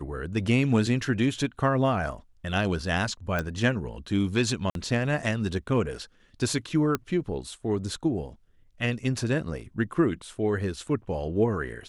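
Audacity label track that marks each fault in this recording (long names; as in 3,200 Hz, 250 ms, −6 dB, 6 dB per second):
3.390000	3.390000	click −15 dBFS
4.700000	4.750000	drop-out 52 ms
6.950000	6.950000	click −12 dBFS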